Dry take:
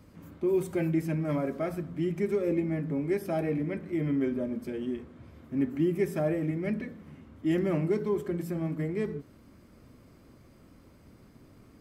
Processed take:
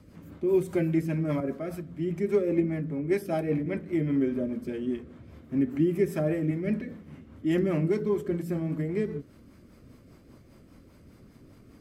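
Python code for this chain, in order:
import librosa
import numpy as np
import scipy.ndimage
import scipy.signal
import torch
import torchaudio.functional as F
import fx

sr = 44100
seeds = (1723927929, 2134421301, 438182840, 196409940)

y = fx.rotary(x, sr, hz=5.0)
y = fx.band_widen(y, sr, depth_pct=70, at=(1.4, 3.66))
y = y * librosa.db_to_amplitude(3.5)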